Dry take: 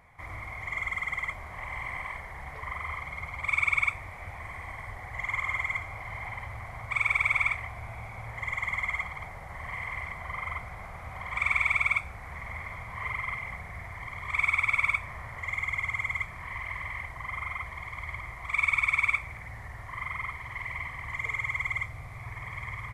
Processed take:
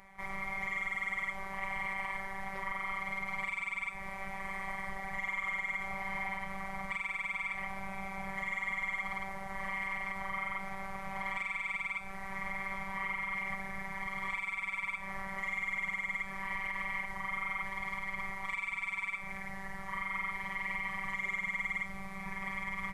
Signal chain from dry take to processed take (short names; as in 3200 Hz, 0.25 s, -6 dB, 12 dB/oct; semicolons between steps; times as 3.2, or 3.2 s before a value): compressor, threshold -29 dBFS, peak gain reduction 8.5 dB; limiter -29 dBFS, peak gain reduction 8.5 dB; robotiser 193 Hz; gain +4 dB